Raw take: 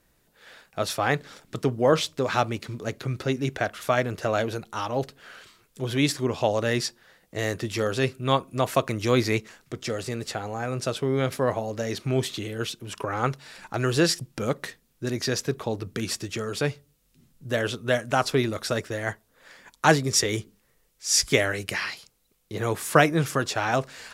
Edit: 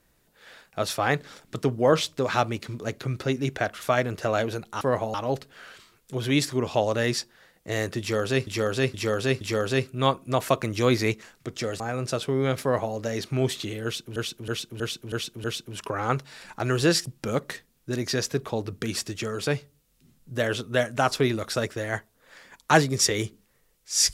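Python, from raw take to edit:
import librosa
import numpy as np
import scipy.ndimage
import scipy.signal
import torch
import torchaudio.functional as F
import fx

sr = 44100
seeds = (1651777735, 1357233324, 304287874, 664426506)

y = fx.edit(x, sr, fx.repeat(start_s=7.67, length_s=0.47, count=4),
    fx.cut(start_s=10.06, length_s=0.48),
    fx.duplicate(start_s=11.36, length_s=0.33, to_s=4.81),
    fx.repeat(start_s=12.58, length_s=0.32, count=6), tone=tone)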